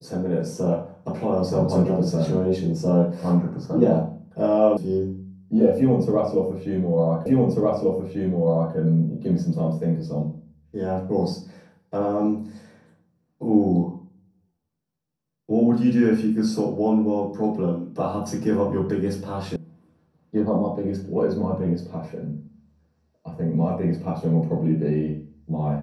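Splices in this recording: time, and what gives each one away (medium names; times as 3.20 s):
4.77 s: sound stops dead
7.26 s: repeat of the last 1.49 s
19.56 s: sound stops dead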